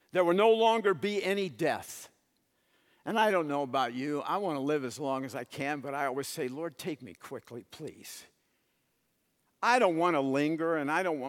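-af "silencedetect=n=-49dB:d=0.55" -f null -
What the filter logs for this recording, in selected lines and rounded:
silence_start: 2.07
silence_end: 3.06 | silence_duration: 0.98
silence_start: 8.25
silence_end: 9.62 | silence_duration: 1.37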